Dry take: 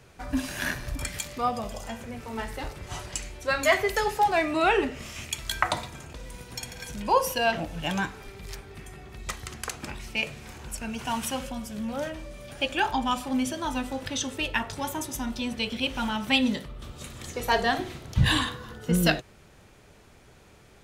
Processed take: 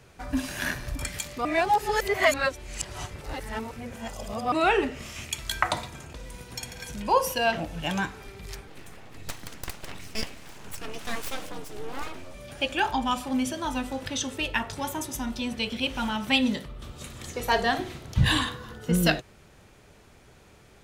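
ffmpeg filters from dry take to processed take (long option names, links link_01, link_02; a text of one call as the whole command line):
ffmpeg -i in.wav -filter_complex "[0:a]asettb=1/sr,asplit=3[link_01][link_02][link_03];[link_01]atrim=end=8.674[link_04];[link_02]atrim=start=8.67:end=12.35,asetpts=PTS-STARTPTS,afade=type=in:duration=0.004:curve=qsin,afade=type=out:start_time=3.676:duration=0.004:curve=qsin,aeval=exprs='abs(val(0))':channel_layout=same[link_05];[link_03]atrim=start=12.346[link_06];[link_04][link_05]acrossfade=duration=0.004:curve1=hsin:curve2=qsin[link_07];[link_07][link_06]acrossfade=duration=0.004:curve1=qsin:curve2=hsin,asplit=3[link_08][link_09][link_10];[link_08]atrim=end=1.452[link_11];[link_09]atrim=start=1.448:end=4.522,asetpts=PTS-STARTPTS,areverse[link_12];[link_10]atrim=start=4.518[link_13];[link_11][link_12]acrossfade=duration=0.004:curve1=hsin:curve2=hsin[link_14];[link_14][link_13]acrossfade=duration=0.004:curve1=hsin:curve2=hsin" out.wav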